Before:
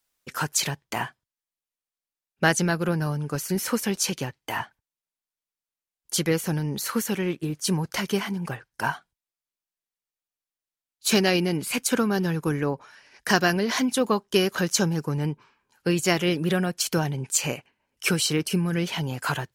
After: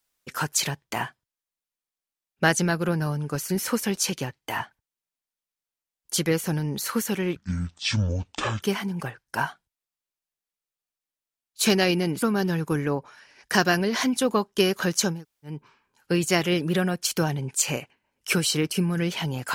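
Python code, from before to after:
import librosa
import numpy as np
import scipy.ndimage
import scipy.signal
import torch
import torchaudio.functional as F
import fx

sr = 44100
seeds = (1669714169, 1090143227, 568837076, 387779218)

y = fx.edit(x, sr, fx.speed_span(start_s=7.36, length_s=0.72, speed=0.57),
    fx.cut(start_s=11.68, length_s=0.3),
    fx.room_tone_fill(start_s=14.89, length_s=0.41, crossfade_s=0.24), tone=tone)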